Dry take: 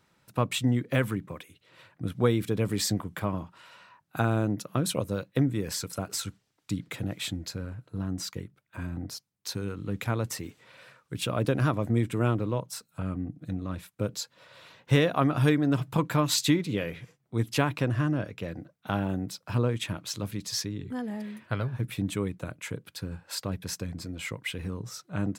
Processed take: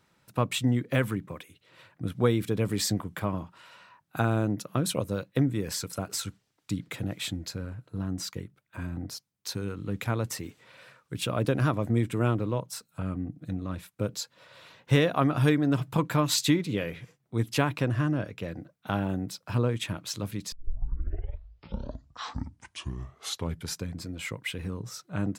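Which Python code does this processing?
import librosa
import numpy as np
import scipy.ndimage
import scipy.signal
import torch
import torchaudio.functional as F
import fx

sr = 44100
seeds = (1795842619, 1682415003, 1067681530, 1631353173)

y = fx.edit(x, sr, fx.tape_start(start_s=20.52, length_s=3.39), tone=tone)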